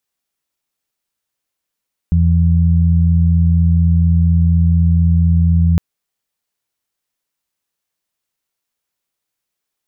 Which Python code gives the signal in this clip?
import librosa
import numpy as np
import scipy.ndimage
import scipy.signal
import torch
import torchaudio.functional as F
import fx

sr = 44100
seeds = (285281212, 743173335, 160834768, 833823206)

y = fx.additive_steady(sr, length_s=3.66, hz=84.2, level_db=-10, upper_db=(-4,))